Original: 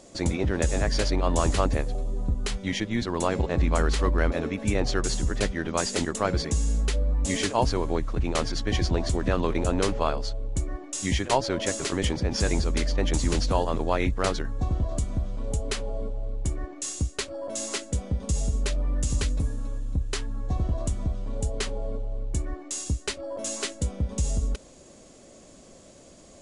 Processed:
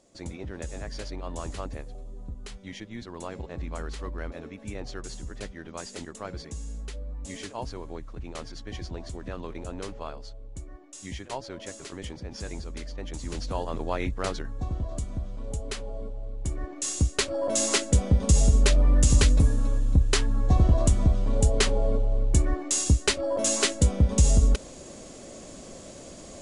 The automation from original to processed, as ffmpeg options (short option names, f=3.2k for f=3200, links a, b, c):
-af "volume=7dB,afade=t=in:st=13.17:d=0.65:silence=0.421697,afade=t=in:st=16.37:d=1.13:silence=0.266073"